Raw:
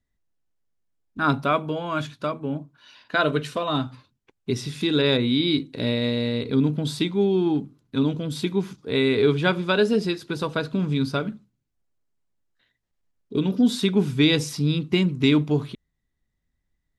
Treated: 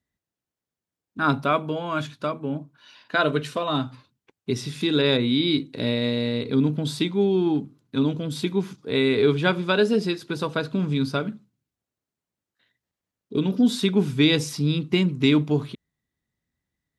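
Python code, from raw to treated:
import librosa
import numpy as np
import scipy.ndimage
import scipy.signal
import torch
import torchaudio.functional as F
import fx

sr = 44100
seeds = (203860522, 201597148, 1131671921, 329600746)

y = scipy.signal.sosfilt(scipy.signal.butter(2, 90.0, 'highpass', fs=sr, output='sos'), x)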